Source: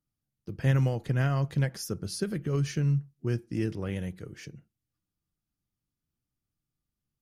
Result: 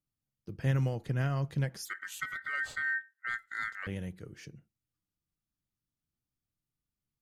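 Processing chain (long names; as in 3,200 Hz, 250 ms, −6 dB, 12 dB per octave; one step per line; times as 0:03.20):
0:01.85–0:03.87: ring modulation 1,700 Hz
level −4.5 dB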